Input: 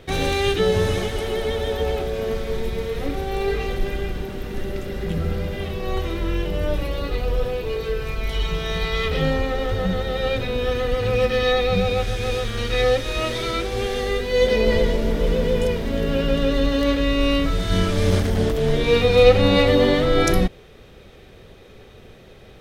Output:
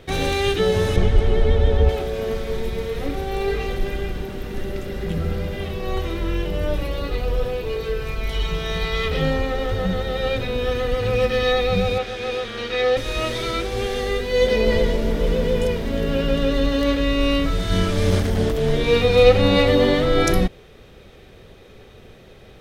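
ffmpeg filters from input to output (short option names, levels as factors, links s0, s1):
-filter_complex "[0:a]asettb=1/sr,asplit=3[s0][s1][s2];[s0]atrim=end=0.964[s3];[s1]atrim=start=0.96:end=1.89,asetpts=PTS-STARTPTS,afade=t=in:d=0.004:c=qsin,afade=t=out:st=0.926:d=0.004:c=qsin,aemphasis=mode=reproduction:type=bsi[s4];[s2]atrim=start=1.886[s5];[s3][s4]acrossfade=d=0.004:c1=hsin:c2=qsin[s6];[s6][s5]acrossfade=d=0.004:c1=qsin:c2=hsin,asettb=1/sr,asplit=3[s7][s8][s9];[s7]atrim=end=11.984[s10];[s8]atrim=start=11.98:end=12.97,asetpts=PTS-STARTPTS,afade=t=in:d=0.004:c=qsin,afade=t=out:st=0.986:d=0.004:c=qsin,acrossover=split=200 5200:gain=0.158 1 0.251[s11][s12][s13];[s11][s12][s13]amix=inputs=3:normalize=0[s14];[s9]atrim=start=12.966[s15];[s10][s14]acrossfade=d=0.004:c1=hsin:c2=qsin[s16];[s16][s15]acrossfade=d=0.004:c1=qsin:c2=hsin"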